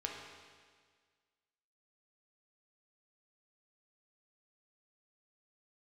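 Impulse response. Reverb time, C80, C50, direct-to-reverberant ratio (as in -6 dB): 1.7 s, 3.5 dB, 2.0 dB, -1.0 dB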